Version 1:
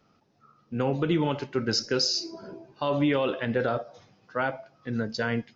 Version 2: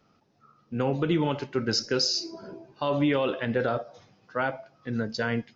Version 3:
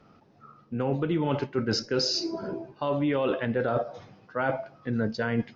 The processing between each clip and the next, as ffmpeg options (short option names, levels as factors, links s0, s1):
-af anull
-af "aemphasis=mode=reproduction:type=75kf,areverse,acompressor=threshold=0.0251:ratio=6,areverse,volume=2.66"